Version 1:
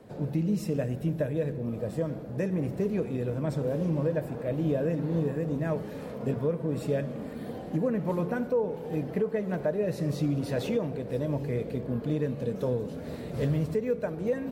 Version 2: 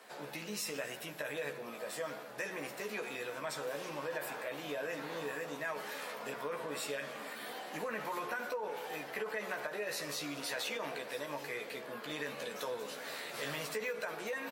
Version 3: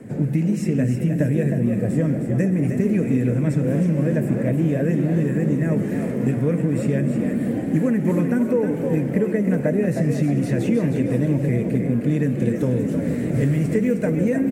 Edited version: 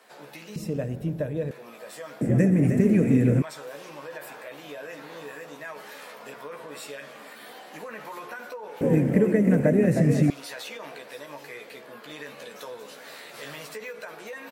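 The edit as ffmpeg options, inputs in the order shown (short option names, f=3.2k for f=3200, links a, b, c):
-filter_complex "[2:a]asplit=2[a][b];[1:a]asplit=4[c][d][e][f];[c]atrim=end=0.562[g];[0:a]atrim=start=0.558:end=1.512[h];[d]atrim=start=1.508:end=2.212[i];[a]atrim=start=2.208:end=3.422[j];[e]atrim=start=3.418:end=8.812[k];[b]atrim=start=8.808:end=10.302[l];[f]atrim=start=10.298[m];[g][h]acrossfade=d=0.004:c1=hsin:c2=hsin[n];[n][i]acrossfade=d=0.004:c1=hsin:c2=hsin[o];[o][j]acrossfade=d=0.004:c1=hsin:c2=hsin[p];[p][k]acrossfade=d=0.004:c1=hsin:c2=hsin[q];[q][l]acrossfade=d=0.004:c1=hsin:c2=hsin[r];[r][m]acrossfade=d=0.004:c1=hsin:c2=hsin"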